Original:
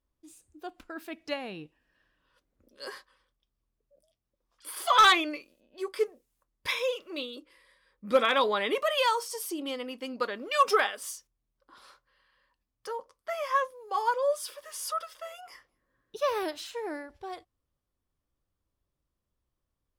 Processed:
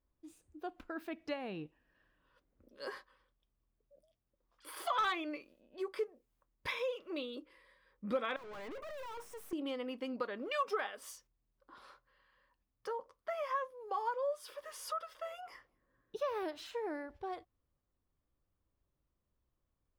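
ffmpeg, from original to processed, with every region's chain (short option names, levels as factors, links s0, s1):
-filter_complex "[0:a]asettb=1/sr,asplit=3[s0][s1][s2];[s0]atrim=end=8.364[s3];[s1]atrim=start=8.36:end=9.53,asetpts=PTS-STARTPTS,afade=t=in:d=0.004:c=qsin,afade=t=out:st=1.166:d=0.004:c=qsin,asuperstop=centerf=3900:order=4:qfactor=0.97,aeval=exprs='(tanh(158*val(0)+0.4)-tanh(0.4))/158':c=same[s4];[s2]atrim=start=9.526[s5];[s3][s4]acrossfade=d=0.004:c1=hsin:c2=qsin[s6];[s6][s5]acrossfade=d=0.004:c1=qsin:c2=hsin,equalizer=f=9600:w=0.32:g=-12,acompressor=threshold=0.0141:ratio=2.5"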